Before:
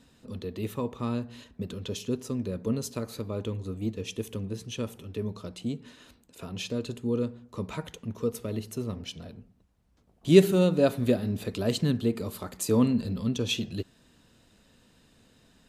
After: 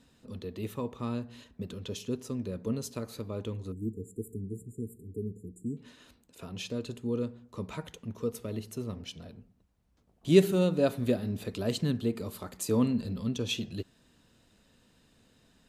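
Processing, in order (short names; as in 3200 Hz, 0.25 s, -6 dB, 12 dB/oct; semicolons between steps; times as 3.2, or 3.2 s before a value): 3.72–5.77 brick-wall FIR band-stop 470–6900 Hz; gain -3.5 dB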